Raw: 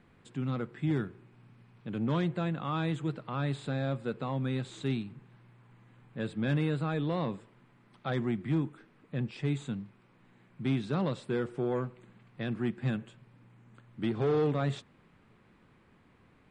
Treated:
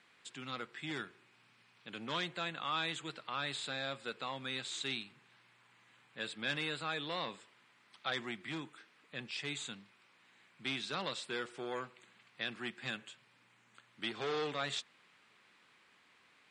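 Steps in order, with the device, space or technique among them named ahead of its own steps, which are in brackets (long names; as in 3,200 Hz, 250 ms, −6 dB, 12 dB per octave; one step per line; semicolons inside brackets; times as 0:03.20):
piezo pickup straight into a mixer (low-pass filter 5,600 Hz 12 dB per octave; first difference)
level +14.5 dB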